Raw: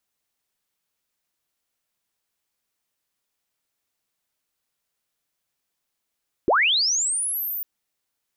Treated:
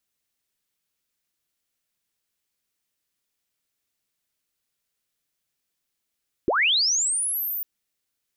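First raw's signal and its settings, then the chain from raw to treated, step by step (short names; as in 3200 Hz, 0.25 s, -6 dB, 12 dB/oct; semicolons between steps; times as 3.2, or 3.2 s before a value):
chirp linear 280 Hz -> 15000 Hz -14.5 dBFS -> -26.5 dBFS 1.15 s
bell 860 Hz -6 dB 1.4 oct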